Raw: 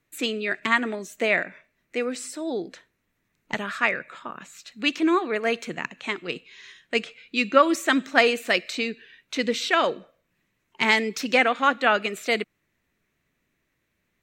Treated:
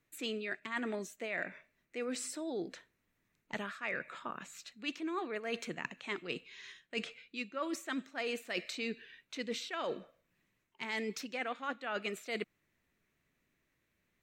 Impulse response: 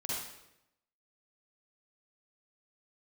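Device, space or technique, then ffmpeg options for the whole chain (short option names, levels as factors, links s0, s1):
compression on the reversed sound: -af "areverse,acompressor=threshold=0.0355:ratio=20,areverse,volume=0.562"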